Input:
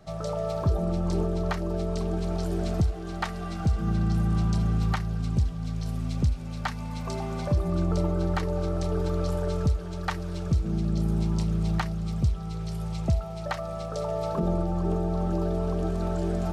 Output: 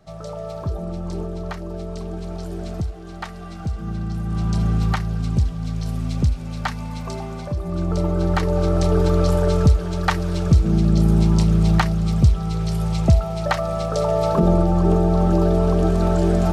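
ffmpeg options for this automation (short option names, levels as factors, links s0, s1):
-af "volume=7.08,afade=t=in:st=4.24:d=0.4:silence=0.446684,afade=t=out:st=6.72:d=0.83:silence=0.446684,afade=t=in:st=7.55:d=1.28:silence=0.266073"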